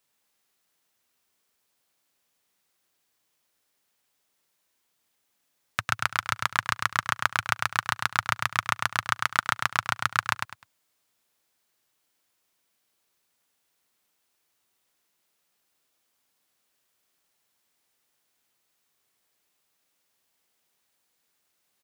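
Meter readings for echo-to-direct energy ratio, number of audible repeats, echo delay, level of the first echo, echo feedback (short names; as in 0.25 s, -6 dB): -4.0 dB, 3, 0.102 s, -4.5 dB, 25%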